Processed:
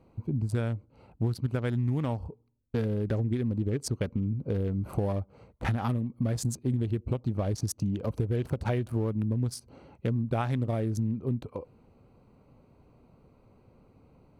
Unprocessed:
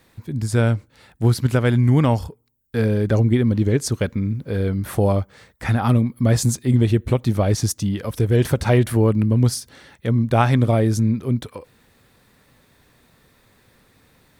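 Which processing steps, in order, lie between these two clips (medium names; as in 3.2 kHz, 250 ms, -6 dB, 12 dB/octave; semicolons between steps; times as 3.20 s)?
local Wiener filter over 25 samples; compression 6:1, threshold -26 dBFS, peak gain reduction 14.5 dB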